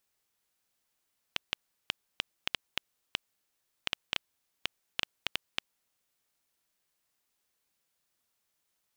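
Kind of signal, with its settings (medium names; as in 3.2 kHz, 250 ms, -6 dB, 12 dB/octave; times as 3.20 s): random clicks 4.1 per s -10 dBFS 4.45 s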